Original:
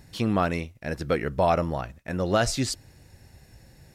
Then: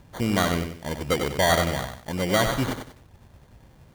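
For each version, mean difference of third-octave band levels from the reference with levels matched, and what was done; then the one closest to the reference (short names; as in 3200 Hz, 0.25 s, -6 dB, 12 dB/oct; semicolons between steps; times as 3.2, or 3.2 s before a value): 8.0 dB: sample-and-hold 17×; dynamic EQ 2600 Hz, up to +4 dB, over -37 dBFS, Q 1.1; lo-fi delay 94 ms, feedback 35%, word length 8-bit, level -6.5 dB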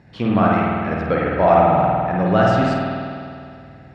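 10.5 dB: BPF 110–2300 Hz; on a send: flutter echo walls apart 8.4 m, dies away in 0.36 s; on the sum: spring tank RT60 2.4 s, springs 50 ms, chirp 55 ms, DRR -4 dB; gain +4 dB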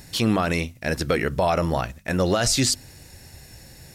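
5.0 dB: high shelf 2800 Hz +8.5 dB; notches 50/100/150/200/250 Hz; limiter -17.5 dBFS, peak gain reduction 9.5 dB; gain +6 dB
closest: third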